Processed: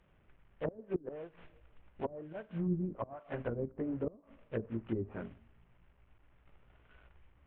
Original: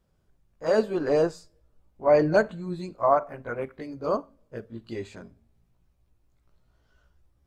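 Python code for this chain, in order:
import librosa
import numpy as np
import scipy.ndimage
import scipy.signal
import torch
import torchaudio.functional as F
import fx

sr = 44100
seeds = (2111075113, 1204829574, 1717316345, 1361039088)

y = fx.cvsd(x, sr, bps=16000)
y = fx.gate_flip(y, sr, shuts_db=-19.0, range_db=-25)
y = fx.env_lowpass_down(y, sr, base_hz=300.0, full_db=-31.5)
y = y * 10.0 ** (2.0 / 20.0)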